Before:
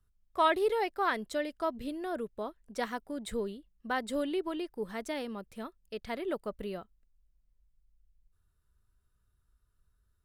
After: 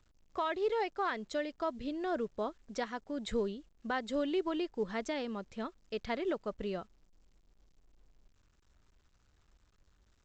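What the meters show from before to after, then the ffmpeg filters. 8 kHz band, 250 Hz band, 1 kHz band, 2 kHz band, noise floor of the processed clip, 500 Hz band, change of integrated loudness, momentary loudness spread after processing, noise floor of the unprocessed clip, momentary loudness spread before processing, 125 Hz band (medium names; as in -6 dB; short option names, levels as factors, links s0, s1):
-4.0 dB, 0.0 dB, -4.0 dB, -3.5 dB, -71 dBFS, -1.5 dB, -2.0 dB, 8 LU, -74 dBFS, 13 LU, +1.0 dB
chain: -af "alimiter=level_in=1.26:limit=0.0631:level=0:latency=1:release=495,volume=0.794,volume=1.26" -ar 16000 -c:a pcm_alaw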